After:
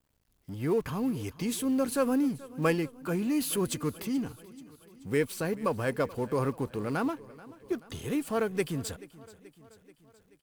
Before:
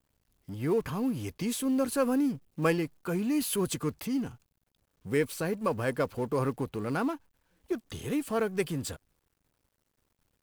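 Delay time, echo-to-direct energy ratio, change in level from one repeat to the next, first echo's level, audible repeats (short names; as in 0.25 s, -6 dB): 0.432 s, -18.0 dB, -4.5 dB, -20.0 dB, 4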